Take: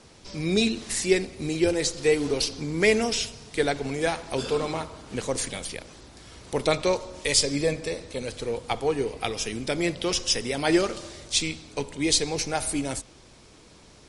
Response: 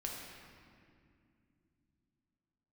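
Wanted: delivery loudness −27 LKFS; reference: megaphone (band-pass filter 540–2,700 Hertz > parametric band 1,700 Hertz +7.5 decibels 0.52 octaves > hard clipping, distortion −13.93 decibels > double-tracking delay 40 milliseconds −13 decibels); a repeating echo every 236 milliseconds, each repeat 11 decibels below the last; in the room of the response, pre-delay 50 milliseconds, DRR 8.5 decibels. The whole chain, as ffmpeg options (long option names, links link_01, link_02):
-filter_complex "[0:a]aecho=1:1:236|472|708:0.282|0.0789|0.0221,asplit=2[link_01][link_02];[1:a]atrim=start_sample=2205,adelay=50[link_03];[link_02][link_03]afir=irnorm=-1:irlink=0,volume=-9dB[link_04];[link_01][link_04]amix=inputs=2:normalize=0,highpass=540,lowpass=2700,equalizer=frequency=1700:width_type=o:width=0.52:gain=7.5,asoftclip=type=hard:threshold=-20dB,asplit=2[link_05][link_06];[link_06]adelay=40,volume=-13dB[link_07];[link_05][link_07]amix=inputs=2:normalize=0,volume=3dB"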